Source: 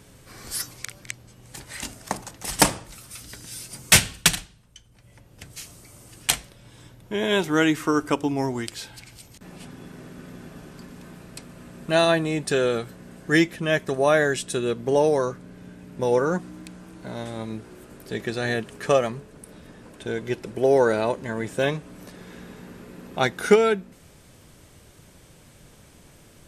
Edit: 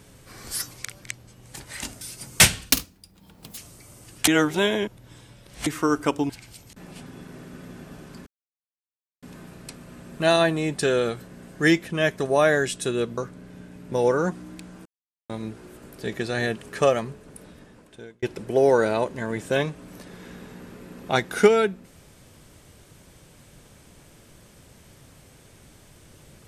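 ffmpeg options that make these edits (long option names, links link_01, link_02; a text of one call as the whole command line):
ffmpeg -i in.wav -filter_complex "[0:a]asplit=12[link_01][link_02][link_03][link_04][link_05][link_06][link_07][link_08][link_09][link_10][link_11][link_12];[link_01]atrim=end=2.012[link_13];[link_02]atrim=start=3.528:end=4.224[link_14];[link_03]atrim=start=4.22:end=5.62,asetpts=PTS-STARTPTS,asetrate=70560,aresample=44100[link_15];[link_04]atrim=start=5.616:end=6.322[link_16];[link_05]atrim=start=6.318:end=7.712,asetpts=PTS-STARTPTS,areverse[link_17];[link_06]atrim=start=7.708:end=8.342[link_18];[link_07]atrim=start=8.938:end=10.91,asetpts=PTS-STARTPTS,afade=type=out:start_time=1.968:duration=0.004:curve=hsin,apad=pad_dur=0.96[link_19];[link_08]atrim=start=10.91:end=14.862,asetpts=PTS-STARTPTS,afade=type=in:duration=0.004:curve=hsin[link_20];[link_09]atrim=start=15.248:end=16.93,asetpts=PTS-STARTPTS,afade=type=out:start_time=1.678:duration=0.004:curve=hsin[link_21];[link_10]atrim=start=16.93:end=17.37,asetpts=PTS-STARTPTS,volume=0[link_22];[link_11]atrim=start=17.37:end=20.3,asetpts=PTS-STARTPTS,afade=type=in:duration=0.004:curve=hsin,afade=type=out:start_time=2.1:duration=0.83[link_23];[link_12]atrim=start=20.3,asetpts=PTS-STARTPTS,afade=type=in:duration=0.004:curve=hsin[link_24];[link_13][link_14]acrossfade=duration=0.004:curve1=hsin:curve2=hsin[link_25];[link_25][link_15]acrossfade=duration=0.004:curve1=hsin:curve2=hsin[link_26];[link_26][link_16]acrossfade=duration=0.004:curve1=hsin:curve2=hsin[link_27];[link_27][link_17]acrossfade=duration=0.004:curve1=hsin:curve2=hsin[link_28];[link_28][link_18]acrossfade=duration=0.004:curve1=hsin:curve2=hsin[link_29];[link_19][link_20]concat=n=2:v=0:a=1[link_30];[link_29][link_30]acrossfade=duration=0.004:curve1=hsin:curve2=hsin[link_31];[link_21][link_22][link_23][link_24]concat=n=4:v=0:a=1[link_32];[link_31][link_32]acrossfade=duration=0.004:curve1=hsin:curve2=hsin" out.wav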